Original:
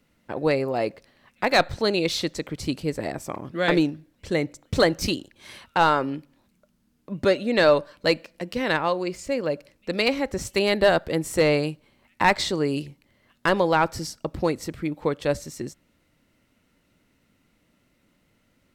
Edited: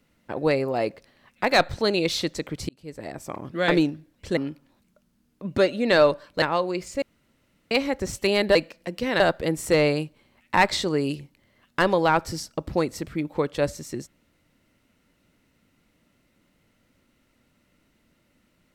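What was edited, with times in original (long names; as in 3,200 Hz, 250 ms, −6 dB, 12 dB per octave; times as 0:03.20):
0:02.69–0:03.47: fade in
0:04.37–0:06.04: remove
0:08.09–0:08.74: move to 0:10.87
0:09.34–0:10.03: fill with room tone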